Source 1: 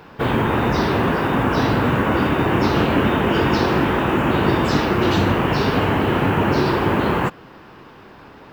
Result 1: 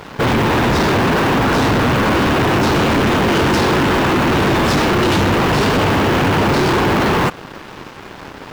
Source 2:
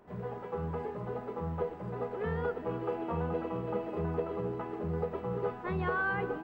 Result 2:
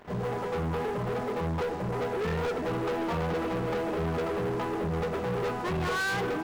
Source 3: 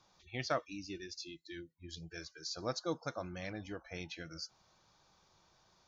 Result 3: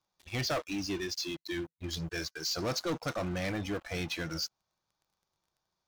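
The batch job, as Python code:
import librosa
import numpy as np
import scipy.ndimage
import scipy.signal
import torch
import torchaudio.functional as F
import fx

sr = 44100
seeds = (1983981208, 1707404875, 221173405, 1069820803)

y = fx.leveller(x, sr, passes=5)
y = y * librosa.db_to_amplitude(-6.0)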